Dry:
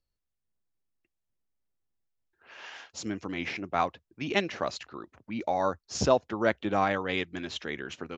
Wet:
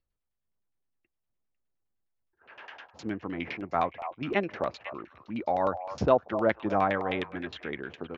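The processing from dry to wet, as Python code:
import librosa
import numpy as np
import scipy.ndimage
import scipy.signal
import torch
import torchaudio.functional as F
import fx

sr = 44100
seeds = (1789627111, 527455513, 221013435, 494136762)

y = fx.vibrato(x, sr, rate_hz=2.3, depth_cents=18.0)
y = fx.echo_stepped(y, sr, ms=248, hz=820.0, octaves=1.4, feedback_pct=70, wet_db=-9.5)
y = fx.filter_lfo_lowpass(y, sr, shape='saw_down', hz=9.7, low_hz=580.0, high_hz=3700.0, q=1.1)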